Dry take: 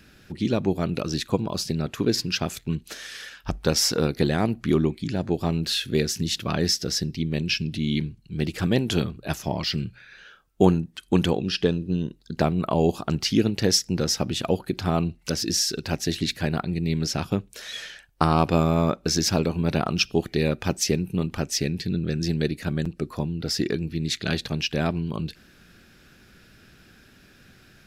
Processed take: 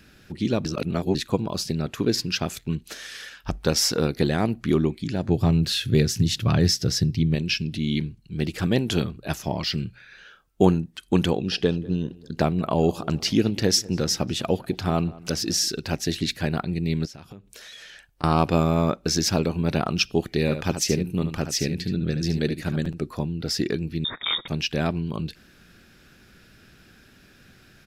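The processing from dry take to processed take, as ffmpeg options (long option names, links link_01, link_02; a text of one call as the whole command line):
ffmpeg -i in.wav -filter_complex "[0:a]asettb=1/sr,asplit=3[link_01][link_02][link_03];[link_01]atrim=end=5.284[link_04];[link_02]atrim=start=5.28:end=7.35,asetpts=PTS-STARTPTS,afade=type=in:duration=0.004:curve=qsin,afade=type=out:start_time=2.066:duration=0.004:curve=qsin,equalizer=frequency=110:width=1.5:gain=14.5[link_05];[link_03]atrim=start=7.346[link_06];[link_04][link_05]acrossfade=duration=0.004:curve1=hsin:curve2=qsin[link_07];[link_07][link_06]acrossfade=duration=0.004:curve1=qsin:curve2=hsin,asettb=1/sr,asplit=3[link_08][link_09][link_10];[link_08]atrim=end=11.324[link_11];[link_09]atrim=start=11.32:end=15.68,asetpts=PTS-STARTPTS,afade=type=in:duration=0.004:curve=qsin,afade=type=out:start_time=4.356:duration=0.004:curve=qsin,asplit=2[link_12][link_13];[link_13]adelay=196,lowpass=frequency=2100:poles=1,volume=-20.5dB,asplit=2[link_14][link_15];[link_15]adelay=196,lowpass=frequency=2100:poles=1,volume=0.53,asplit=2[link_16][link_17];[link_17]adelay=196,lowpass=frequency=2100:poles=1,volume=0.53,asplit=2[link_18][link_19];[link_19]adelay=196,lowpass=frequency=2100:poles=1,volume=0.53[link_20];[link_12][link_14][link_16][link_18][link_20]amix=inputs=5:normalize=0,atrim=end_sample=192276[link_21];[link_10]atrim=start=15.676[link_22];[link_11][link_21]acrossfade=duration=0.004:curve1=hsin:curve2=qsin[link_23];[link_23][link_22]acrossfade=duration=0.004:curve1=qsin:curve2=hsin,asettb=1/sr,asplit=3[link_24][link_25][link_26];[link_24]atrim=end=17.054[link_27];[link_25]atrim=start=17.05:end=18.24,asetpts=PTS-STARTPTS,afade=type=in:duration=0.004:curve=qsin,afade=type=out:start_time=1.186:duration=0.004:curve=qsin,acompressor=threshold=-40dB:ratio=6:attack=3.2:release=140:knee=1:detection=peak[link_28];[link_26]atrim=start=18.236[link_29];[link_27][link_28]acrossfade=duration=0.004:curve1=hsin:curve2=qsin[link_30];[link_30][link_29]acrossfade=duration=0.004:curve1=qsin:curve2=hsin,asplit=3[link_31][link_32][link_33];[link_31]afade=type=out:start_time=20.47:duration=0.02[link_34];[link_32]aecho=1:1:73:0.355,afade=type=in:start_time=20.47:duration=0.02,afade=type=out:start_time=23.01:duration=0.02[link_35];[link_33]afade=type=in:start_time=23.01:duration=0.02[link_36];[link_34][link_35][link_36]amix=inputs=3:normalize=0,asettb=1/sr,asplit=3[link_37][link_38][link_39];[link_37]atrim=end=24.044[link_40];[link_38]atrim=start=24.04:end=24.48,asetpts=PTS-STARTPTS,afade=type=in:duration=0.004:curve=qsin,afade=type=out:start_time=0.436:duration=0.004:curve=qsin,lowpass=frequency=3200:width_type=q:width=0.5098,lowpass=frequency=3200:width_type=q:width=0.6013,lowpass=frequency=3200:width_type=q:width=0.9,lowpass=frequency=3200:width_type=q:width=2.563,afreqshift=-3800[link_41];[link_39]atrim=start=24.476[link_42];[link_40][link_41]acrossfade=duration=0.004:curve1=hsin:curve2=qsin[link_43];[link_43][link_42]acrossfade=duration=0.004:curve1=qsin:curve2=hsin,asplit=3[link_44][link_45][link_46];[link_44]atrim=end=0.652[link_47];[link_45]atrim=start=0.648:end=1.152,asetpts=PTS-STARTPTS,areverse[link_48];[link_46]atrim=start=1.148[link_49];[link_47][link_48]acrossfade=duration=0.004:curve1=hsin:curve2=hsin[link_50];[link_50][link_49]acrossfade=duration=0.004:curve1=hsin:curve2=hsin" out.wav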